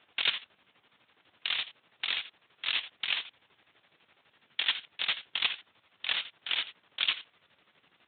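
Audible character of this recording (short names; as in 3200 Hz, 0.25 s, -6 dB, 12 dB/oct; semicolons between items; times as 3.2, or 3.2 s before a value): a quantiser's noise floor 10-bit, dither triangular; chopped level 12 Hz, depth 60%, duty 55%; Speex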